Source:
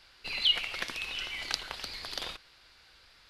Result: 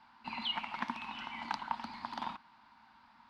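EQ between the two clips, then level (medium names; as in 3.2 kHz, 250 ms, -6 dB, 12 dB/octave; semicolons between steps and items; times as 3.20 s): two resonant band-passes 460 Hz, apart 2 oct; +14.5 dB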